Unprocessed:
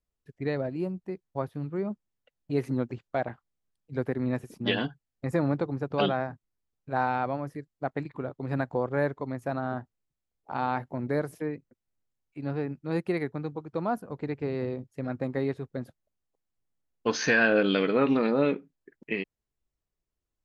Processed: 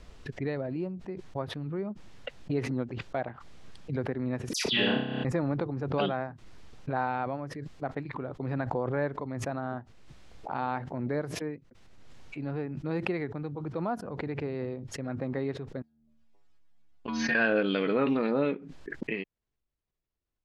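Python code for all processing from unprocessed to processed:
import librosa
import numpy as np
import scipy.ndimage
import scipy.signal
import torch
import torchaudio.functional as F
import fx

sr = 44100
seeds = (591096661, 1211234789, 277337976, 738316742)

y = fx.chain(x, sr, fx.high_shelf(hz=2200.0, db=8.0),
    fx.dispersion(late='lows', ms=120.0, hz=2200.0),
    fx.room_flutter(wall_m=5.2, rt60_s=0.71), at=(4.53, 5.25))
y = fx.chain(y, sr, fx.level_steps(step_db=23),
    fx.peak_eq(hz=480.0, db=-10.0, octaves=0.35),
    fx.stiff_resonator(f0_hz=73.0, decay_s=0.54, stiffness=0.008), at=(15.82, 17.35))
y = scipy.signal.sosfilt(scipy.signal.butter(2, 4600.0, 'lowpass', fs=sr, output='sos'), y)
y = fx.pre_swell(y, sr, db_per_s=31.0)
y = y * 10.0 ** (-3.5 / 20.0)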